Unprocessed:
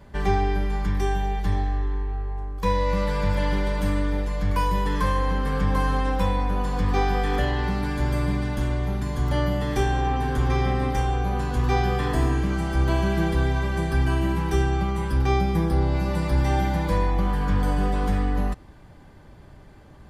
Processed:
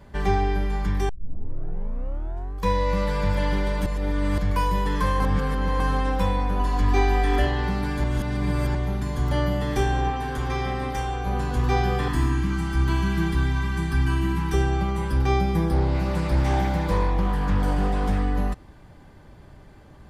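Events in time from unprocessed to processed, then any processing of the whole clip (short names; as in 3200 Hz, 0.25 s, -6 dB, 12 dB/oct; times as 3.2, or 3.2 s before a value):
1.09 tape start 1.45 s
3.86–4.38 reverse
5.2–5.8 reverse
6.59–7.47 comb 3 ms
8.04–8.75 reverse
10.1–11.27 low shelf 460 Hz -6 dB
12.08–14.54 band shelf 550 Hz -15.5 dB 1 oct
15.74–18.22 Doppler distortion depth 0.26 ms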